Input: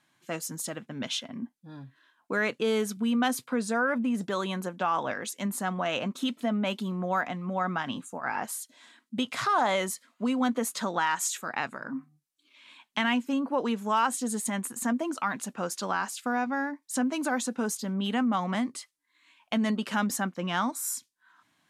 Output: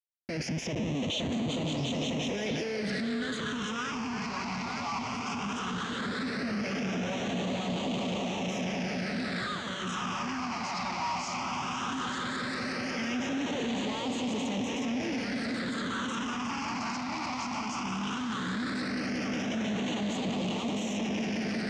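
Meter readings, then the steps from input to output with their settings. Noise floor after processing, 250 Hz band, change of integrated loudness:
-35 dBFS, -1.5 dB, -3.0 dB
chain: saturation -19 dBFS, distortion -20 dB; echo with a slow build-up 181 ms, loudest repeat 8, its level -11 dB; peak limiter -23 dBFS, peak gain reduction 8 dB; Schmitt trigger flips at -42 dBFS; high-pass 100 Hz 12 dB/octave; phase shifter stages 8, 0.16 Hz, lowest notch 470–1600 Hz; low-pass 6 kHz 24 dB/octave; repeats whose band climbs or falls 454 ms, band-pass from 600 Hz, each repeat 1.4 oct, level -3.5 dB; trim +1.5 dB

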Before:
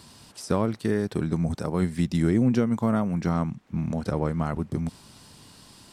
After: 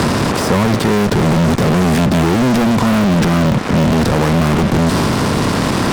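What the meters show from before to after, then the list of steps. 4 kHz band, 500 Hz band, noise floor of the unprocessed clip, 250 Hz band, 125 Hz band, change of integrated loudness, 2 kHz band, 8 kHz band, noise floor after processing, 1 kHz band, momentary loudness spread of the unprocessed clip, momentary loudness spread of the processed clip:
+22.5 dB, +13.5 dB, -52 dBFS, +12.5 dB, +13.0 dB, +12.5 dB, +20.5 dB, +19.5 dB, -18 dBFS, +17.5 dB, 9 LU, 2 LU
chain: spectral levelling over time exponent 0.6; low-pass 3.2 kHz 6 dB/octave; transient shaper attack -6 dB, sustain +3 dB; fuzz box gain 37 dB, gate -43 dBFS; three bands compressed up and down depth 70%; trim +2 dB

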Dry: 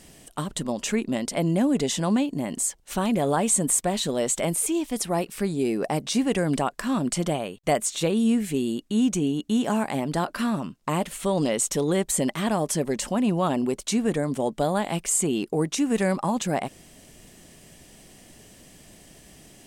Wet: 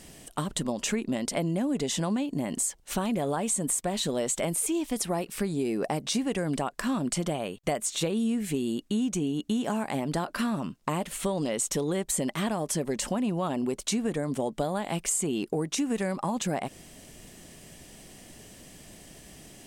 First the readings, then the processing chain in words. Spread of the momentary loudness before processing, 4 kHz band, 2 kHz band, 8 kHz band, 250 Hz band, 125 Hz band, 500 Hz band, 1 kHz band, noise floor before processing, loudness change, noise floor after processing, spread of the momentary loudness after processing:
5 LU, -2.5 dB, -4.0 dB, -3.5 dB, -4.5 dB, -4.0 dB, -4.5 dB, -5.0 dB, -53 dBFS, -4.5 dB, -54 dBFS, 20 LU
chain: compression, threshold -26 dBFS, peak gain reduction 9 dB; trim +1 dB

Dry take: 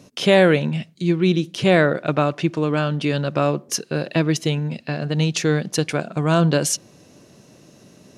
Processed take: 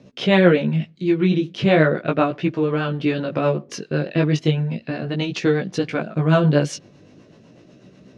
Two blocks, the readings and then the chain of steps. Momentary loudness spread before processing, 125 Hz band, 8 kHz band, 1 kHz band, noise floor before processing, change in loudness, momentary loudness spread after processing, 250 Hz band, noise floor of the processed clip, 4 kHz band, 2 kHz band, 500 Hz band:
8 LU, +0.5 dB, -12.0 dB, -1.0 dB, -51 dBFS, 0.0 dB, 9 LU, +1.0 dB, -50 dBFS, -3.0 dB, -0.5 dB, 0.0 dB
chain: rotary cabinet horn 8 Hz; chorus 0.37 Hz, delay 15.5 ms, depth 5.2 ms; low-pass 3.5 kHz 12 dB/octave; trim +5.5 dB

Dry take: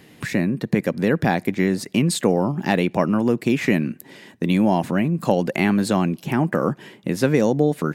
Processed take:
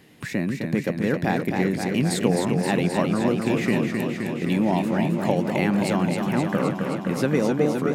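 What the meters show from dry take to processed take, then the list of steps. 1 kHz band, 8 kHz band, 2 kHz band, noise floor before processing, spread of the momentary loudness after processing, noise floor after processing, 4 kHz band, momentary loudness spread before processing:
-2.5 dB, -2.5 dB, -2.0 dB, -50 dBFS, 5 LU, -33 dBFS, -2.0 dB, 5 LU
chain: modulated delay 262 ms, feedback 76%, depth 87 cents, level -5 dB; trim -4.5 dB

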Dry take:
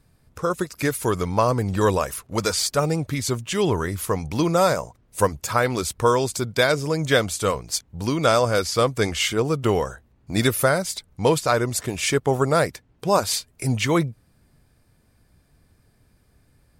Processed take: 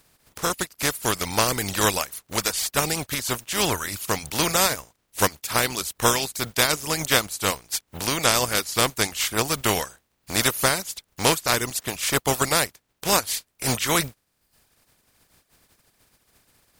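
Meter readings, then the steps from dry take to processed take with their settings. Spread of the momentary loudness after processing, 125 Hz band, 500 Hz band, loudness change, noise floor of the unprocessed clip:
7 LU, -7.0 dB, -6.5 dB, -0.5 dB, -61 dBFS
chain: spectral contrast reduction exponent 0.39; reverb removal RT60 0.73 s; trim -1 dB

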